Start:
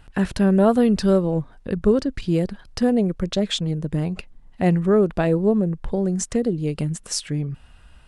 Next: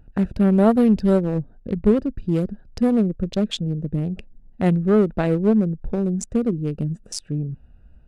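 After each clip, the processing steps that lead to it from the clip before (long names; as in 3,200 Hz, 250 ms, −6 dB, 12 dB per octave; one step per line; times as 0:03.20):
adaptive Wiener filter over 41 samples
parametric band 220 Hz +4 dB 0.22 octaves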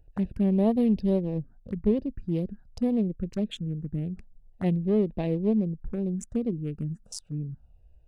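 phaser swept by the level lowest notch 200 Hz, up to 1,400 Hz, full sweep at −17.5 dBFS
level −6.5 dB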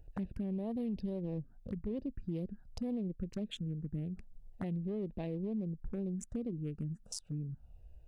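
brickwall limiter −22 dBFS, peak gain reduction 9 dB
downward compressor 2 to 1, threshold −44 dBFS, peak gain reduction 10.5 dB
level +1.5 dB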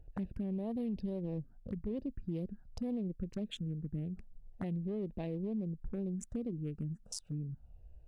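one half of a high-frequency compander decoder only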